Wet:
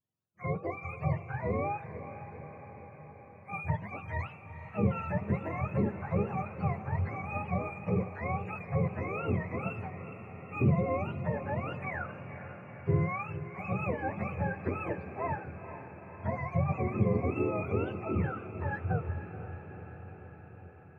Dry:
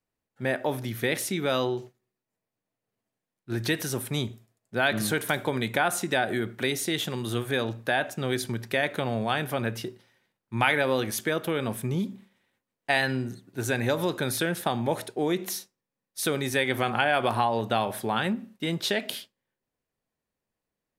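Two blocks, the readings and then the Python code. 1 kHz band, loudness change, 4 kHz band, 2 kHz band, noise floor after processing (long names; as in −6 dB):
−6.5 dB, −6.0 dB, below −30 dB, −12.0 dB, −51 dBFS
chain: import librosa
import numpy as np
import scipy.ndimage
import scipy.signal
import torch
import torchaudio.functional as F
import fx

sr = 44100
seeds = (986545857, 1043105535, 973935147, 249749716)

y = fx.octave_mirror(x, sr, pivot_hz=540.0)
y = fx.wow_flutter(y, sr, seeds[0], rate_hz=2.1, depth_cents=94.0)
y = fx.echo_diffused(y, sr, ms=468, feedback_pct=68, wet_db=-11.5)
y = y * librosa.db_to_amplitude(-5.5)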